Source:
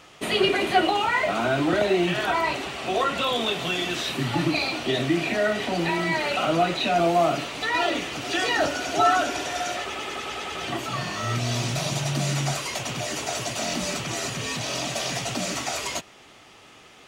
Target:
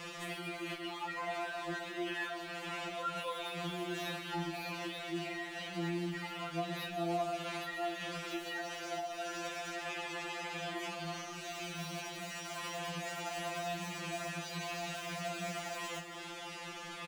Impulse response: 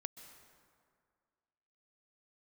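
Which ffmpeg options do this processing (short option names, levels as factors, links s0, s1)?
-filter_complex "[0:a]acrossover=split=390|2800[s0][s1][s2];[s2]aeval=exprs='0.0282*(abs(mod(val(0)/0.0282+3,4)-2)-1)':c=same[s3];[s0][s1][s3]amix=inputs=3:normalize=0,acompressor=threshold=0.0178:ratio=6,asettb=1/sr,asplit=3[s4][s5][s6];[s4]atrim=end=1.924[s7];[s5]atrim=start=1.92:end=2.41,asetpts=PTS-STARTPTS,afade=t=in:d=0.004:c=qsin,afade=t=out:st=0.486:d=0.004:c=qsin,highpass=f=280:w=0.5412,highpass=f=280:w=1.3066[s8];[s6]atrim=start=2.406[s9];[s7][s8]acrossfade=d=0.004:c1=hsin:c2=qsin[s10];[s10][s9]acrossfade=d=0.004:c1=qsin:c2=hsin,acrossover=split=1100|2400[s11][s12][s13];[s11]acompressor=threshold=0.00447:ratio=4[s14];[s12]acompressor=threshold=0.00355:ratio=4[s15];[s13]acompressor=threshold=0.002:ratio=4[s16];[s14][s15][s16]amix=inputs=3:normalize=0,asplit=2[s17][s18];[s18]acrusher=bits=4:mode=log:mix=0:aa=0.000001,volume=0.282[s19];[s17][s19]amix=inputs=2:normalize=0,asplit=2[s20][s21];[s21]adelay=36,volume=0.2[s22];[s20][s22]amix=inputs=2:normalize=0[s23];[1:a]atrim=start_sample=2205[s24];[s23][s24]afir=irnorm=-1:irlink=0,asoftclip=type=tanh:threshold=0.0133,afftfilt=real='re*2.83*eq(mod(b,8),0)':imag='im*2.83*eq(mod(b,8),0)':win_size=2048:overlap=0.75,volume=2.82"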